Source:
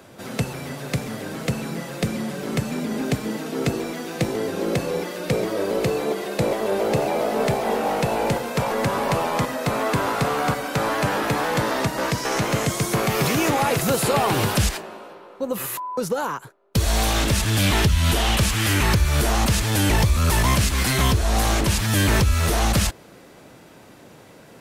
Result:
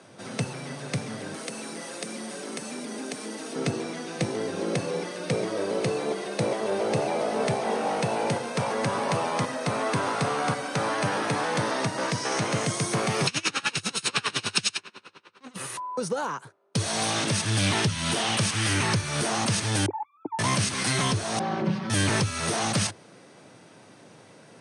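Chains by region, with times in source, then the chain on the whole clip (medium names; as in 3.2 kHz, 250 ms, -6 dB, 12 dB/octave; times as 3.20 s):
1.34–3.56 s: high-pass 230 Hz 24 dB/octave + treble shelf 7.3 kHz +11.5 dB + compression 2:1, threshold -29 dBFS
13.27–15.56 s: comb filter that takes the minimum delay 0.74 ms + frequency weighting D + logarithmic tremolo 10 Hz, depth 28 dB
19.86–20.39 s: formants replaced by sine waves + cascade formant filter u + bass shelf 470 Hz +9.5 dB
21.39–21.90 s: comb filter that takes the minimum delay 5.4 ms + tape spacing loss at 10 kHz 41 dB + comb 5.2 ms, depth 93%
whole clip: Chebyshev band-pass 100–9300 Hz, order 5; treble shelf 7.3 kHz +9.5 dB; band-stop 7.3 kHz, Q 5.5; trim -4 dB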